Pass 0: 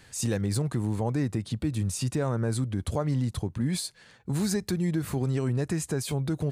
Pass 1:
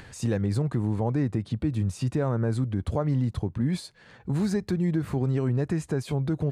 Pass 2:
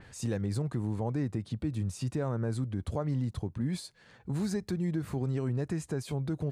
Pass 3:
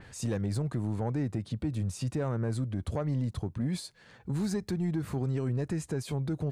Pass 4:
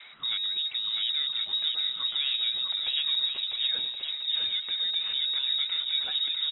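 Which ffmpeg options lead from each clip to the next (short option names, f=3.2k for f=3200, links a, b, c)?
-af "lowpass=f=1.8k:p=1,acompressor=mode=upward:threshold=-41dB:ratio=2.5,volume=2dB"
-af "adynamicequalizer=threshold=0.00251:dfrequency=4100:dqfactor=0.7:tfrequency=4100:tqfactor=0.7:attack=5:release=100:ratio=0.375:range=2.5:mode=boostabove:tftype=highshelf,volume=-6dB"
-af "asoftclip=type=tanh:threshold=-24dB,volume=2dB"
-af "equalizer=f=2.5k:t=o:w=2:g=7,lowpass=f=3.3k:t=q:w=0.5098,lowpass=f=3.3k:t=q:w=0.6013,lowpass=f=3.3k:t=q:w=0.9,lowpass=f=3.3k:t=q:w=2.563,afreqshift=-3900,aecho=1:1:650|1072|1347|1526|1642:0.631|0.398|0.251|0.158|0.1"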